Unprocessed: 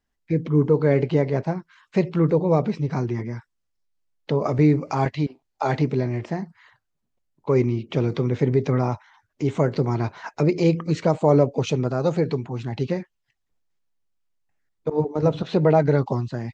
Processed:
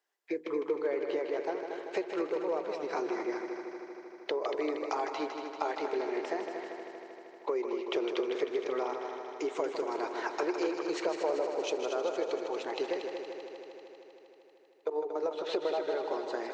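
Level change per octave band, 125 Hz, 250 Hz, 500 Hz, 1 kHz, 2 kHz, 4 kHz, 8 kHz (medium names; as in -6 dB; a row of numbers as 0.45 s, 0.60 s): under -40 dB, -14.5 dB, -8.5 dB, -7.0 dB, -5.0 dB, -3.0 dB, no reading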